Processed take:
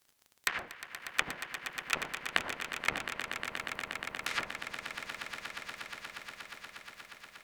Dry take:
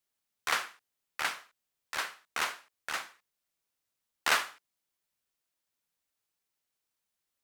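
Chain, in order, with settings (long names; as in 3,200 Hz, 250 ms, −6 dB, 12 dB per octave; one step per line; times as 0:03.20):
sub-octave generator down 1 octave, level −4 dB
surface crackle 37 per second −55 dBFS
compressor whose output falls as the input rises −34 dBFS, ratio −0.5
treble cut that deepens with the level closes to 390 Hz, closed at −33.5 dBFS
formants moved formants +6 semitones
on a send: echo that builds up and dies away 119 ms, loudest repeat 8, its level −11.5 dB
on the sum: level +8.5 dB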